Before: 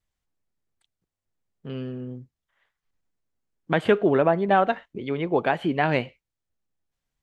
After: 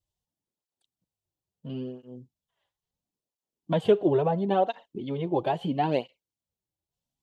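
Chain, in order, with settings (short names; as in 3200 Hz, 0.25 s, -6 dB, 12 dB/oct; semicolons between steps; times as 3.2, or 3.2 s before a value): band shelf 1700 Hz -12 dB 1.2 oct; tape flanging out of phase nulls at 0.74 Hz, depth 4.7 ms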